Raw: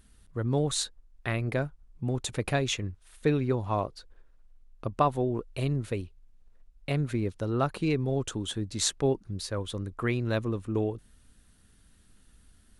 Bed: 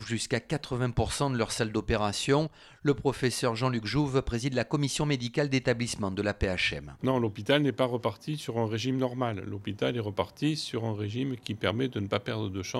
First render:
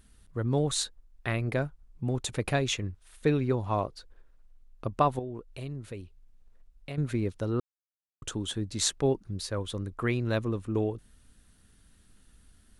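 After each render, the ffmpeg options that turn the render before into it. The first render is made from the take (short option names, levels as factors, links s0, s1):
-filter_complex "[0:a]asettb=1/sr,asplit=3[s0][s1][s2];[s0]atrim=end=5.194[s3];[s1]atrim=start=5.19:end=6.98,asetpts=PTS-STARTPTS,afade=t=in:d=0.004:c=qsin,afade=t=out:st=1.786:d=0.004:c=qsin,acompressor=threshold=0.00316:ratio=1.5:attack=3.2:release=140:knee=1:detection=peak[s4];[s2]atrim=start=6.976[s5];[s3][s4]acrossfade=d=0.004:c1=hsin:c2=qsin[s6];[s6][s5]acrossfade=d=0.004:c1=qsin:c2=hsin,asplit=3[s7][s8][s9];[s7]atrim=end=7.6,asetpts=PTS-STARTPTS,afade=t=out:st=7.596:d=0.004:c=hsin[s10];[s8]atrim=start=7.6:end=8.22,asetpts=PTS-STARTPTS,volume=0[s11];[s9]atrim=start=8.22,asetpts=PTS-STARTPTS,afade=t=in:d=0.004:c=hsin[s12];[s10][s11][s12]concat=n=3:v=0:a=1"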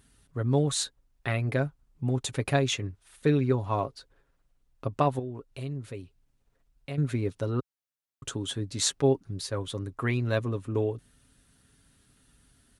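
-af "highpass=51,aecho=1:1:7.3:0.46"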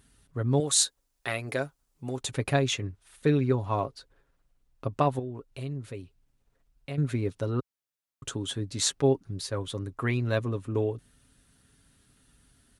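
-filter_complex "[0:a]asettb=1/sr,asplit=3[s0][s1][s2];[s0]atrim=end=0.604[s3];[s1]atrim=start=0.6:end=2.21,asetpts=PTS-STARTPTS,afade=t=in:d=0.004:c=qsin,afade=t=out:st=1.606:d=0.004:c=qsin,bass=f=250:g=-11,treble=f=4000:g=9[s4];[s2]atrim=start=2.206[s5];[s3][s4]acrossfade=d=0.004:c1=hsin:c2=qsin[s6];[s6][s5]acrossfade=d=0.004:c1=qsin:c2=hsin"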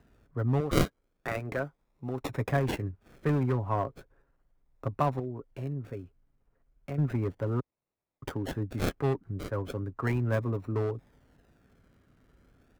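-filter_complex "[0:a]acrossover=split=200|700|2200[s0][s1][s2][s3];[s1]asoftclip=type=hard:threshold=0.0282[s4];[s3]acrusher=samples=39:mix=1:aa=0.000001:lfo=1:lforange=23.4:lforate=0.35[s5];[s0][s4][s2][s5]amix=inputs=4:normalize=0"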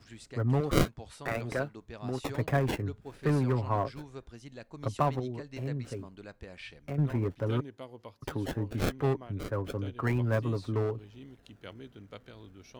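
-filter_complex "[1:a]volume=0.126[s0];[0:a][s0]amix=inputs=2:normalize=0"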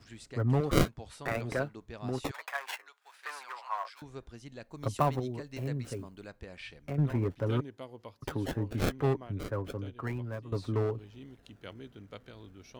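-filter_complex "[0:a]asettb=1/sr,asplit=3[s0][s1][s2];[s0]atrim=end=2.314[s3];[s1]atrim=start=2.31:end=4.02,asetpts=PTS-STARTPTS,afade=t=in:d=0.004:c=qsin,afade=t=out:st=1.706:d=0.004:c=qsin,highpass=f=910:w=0.5412,highpass=f=910:w=1.3066[s4];[s2]atrim=start=4.016[s5];[s3][s4]acrossfade=d=0.004:c1=hsin:c2=qsin[s6];[s6][s5]acrossfade=d=0.004:c1=qsin:c2=hsin,asettb=1/sr,asplit=3[s7][s8][s9];[s7]atrim=end=4.704[s10];[s8]atrim=start=4.7:end=6.29,asetpts=PTS-STARTPTS,afade=t=in:d=0.004:c=qsin,afade=t=out:st=1.586:d=0.004:c=qsin,highshelf=f=10000:g=12[s11];[s9]atrim=start=6.286[s12];[s10][s11]acrossfade=d=0.004:c1=hsin:c2=qsin[s13];[s13][s12]acrossfade=d=0.004:c1=qsin:c2=hsin,asplit=2[s14][s15];[s14]atrim=end=10.52,asetpts=PTS-STARTPTS,afade=t=out:st=9.31:d=1.21:silence=0.16788[s16];[s15]atrim=start=10.52,asetpts=PTS-STARTPTS,afade=t=in:d=0.004:c=hsin:silence=0.16788[s17];[s16][s17]concat=n=2:v=0:a=1"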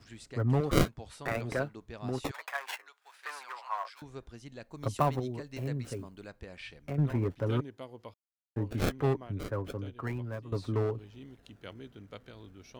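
-filter_complex "[0:a]asplit=3[s0][s1][s2];[s0]atrim=end=8.14,asetpts=PTS-STARTPTS,afade=t=out:st=8.136:d=0.004:c=hsin[s3];[s1]atrim=start=8.14:end=8.56,asetpts=PTS-STARTPTS,volume=0[s4];[s2]atrim=start=8.56,asetpts=PTS-STARTPTS,afade=t=in:d=0.004:c=hsin[s5];[s3][s4][s5]concat=n=3:v=0:a=1"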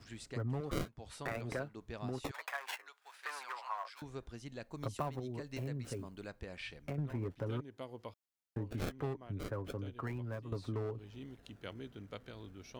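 -af "acompressor=threshold=0.0126:ratio=3"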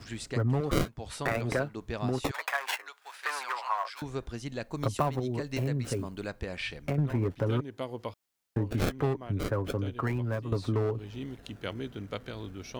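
-af "volume=3.16"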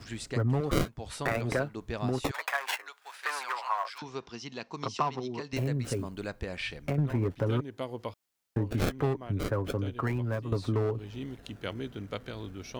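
-filter_complex "[0:a]asettb=1/sr,asplit=3[s0][s1][s2];[s0]atrim=end=3.984[s3];[s1]atrim=start=3.98:end=5.53,asetpts=PTS-STARTPTS,afade=t=in:d=0.004:c=qsin,afade=t=out:st=1.546:d=0.004:c=qsin,highpass=210,equalizer=f=300:t=q:w=4:g=-5,equalizer=f=570:t=q:w=4:g=-9,equalizer=f=1000:t=q:w=4:g=5,equalizer=f=1600:t=q:w=4:g=-4,equalizer=f=2800:t=q:w=4:g=4,equalizer=f=5400:t=q:w=4:g=9,lowpass=f=6000:w=0.5412,lowpass=f=6000:w=1.3066[s4];[s2]atrim=start=5.526[s5];[s3][s4]acrossfade=d=0.004:c1=hsin:c2=qsin[s6];[s6][s5]acrossfade=d=0.004:c1=qsin:c2=hsin"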